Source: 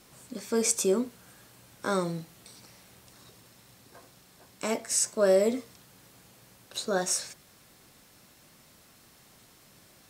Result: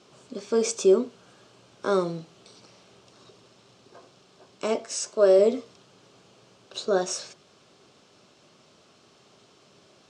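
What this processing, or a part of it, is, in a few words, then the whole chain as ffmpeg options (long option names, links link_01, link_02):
car door speaker: -filter_complex "[0:a]asettb=1/sr,asplit=3[link_01][link_02][link_03];[link_01]atrim=end=4.864[link_04];[link_02]atrim=start=4.86:end=5.39,asetpts=PTS-STARTPTS,afade=type=in:duration=0.004:curve=qsin,afade=type=out:start_time=0.526:duration=0.004:curve=qsin,lowshelf=frequency=170:gain=-10[link_05];[link_03]atrim=start=5.386[link_06];[link_04][link_05]acrossfade=duration=0.004:curve1=hsin:curve2=qsin[link_07];[link_07][link_06]acrossfade=duration=0.004:curve1=qsin:curve2=hsin,highpass=110,equalizer=frequency=400:width_type=q:width=4:gain=9,equalizer=frequency=620:width_type=q:width=4:gain=5,equalizer=frequency=1200:width_type=q:width=4:gain=4,equalizer=frequency=1900:width_type=q:width=4:gain=-7,equalizer=frequency=3000:width_type=q:width=4:gain=4,lowpass=frequency=6700:width=0.5412,lowpass=frequency=6700:width=1.3066"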